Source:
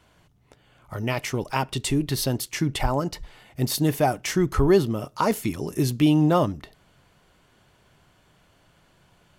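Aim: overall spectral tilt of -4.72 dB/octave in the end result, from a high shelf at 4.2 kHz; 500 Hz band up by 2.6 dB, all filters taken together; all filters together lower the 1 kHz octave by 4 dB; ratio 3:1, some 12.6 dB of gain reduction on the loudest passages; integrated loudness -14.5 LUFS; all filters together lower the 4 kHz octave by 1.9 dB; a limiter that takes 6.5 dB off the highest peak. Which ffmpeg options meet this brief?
-af "equalizer=f=500:t=o:g=5.5,equalizer=f=1000:t=o:g=-8,equalizer=f=4000:t=o:g=-5.5,highshelf=f=4200:g=5.5,acompressor=threshold=0.0355:ratio=3,volume=8.41,alimiter=limit=0.631:level=0:latency=1"

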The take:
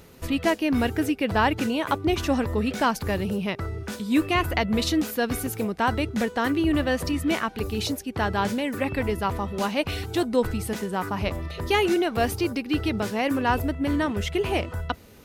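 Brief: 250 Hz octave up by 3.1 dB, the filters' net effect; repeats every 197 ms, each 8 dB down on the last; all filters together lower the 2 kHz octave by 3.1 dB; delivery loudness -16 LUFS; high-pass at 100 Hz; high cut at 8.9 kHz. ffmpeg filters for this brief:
-af "highpass=100,lowpass=8900,equalizer=f=250:t=o:g=4,equalizer=f=2000:t=o:g=-4,aecho=1:1:197|394|591|788|985:0.398|0.159|0.0637|0.0255|0.0102,volume=2.37"

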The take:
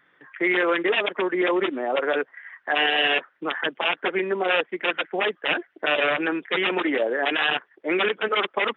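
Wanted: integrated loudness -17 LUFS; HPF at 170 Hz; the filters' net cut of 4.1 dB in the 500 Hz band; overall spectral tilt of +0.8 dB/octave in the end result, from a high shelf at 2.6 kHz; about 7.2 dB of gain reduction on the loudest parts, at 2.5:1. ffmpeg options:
-af "highpass=170,equalizer=f=500:t=o:g=-5.5,highshelf=f=2600:g=4,acompressor=threshold=0.0398:ratio=2.5,volume=3.98"

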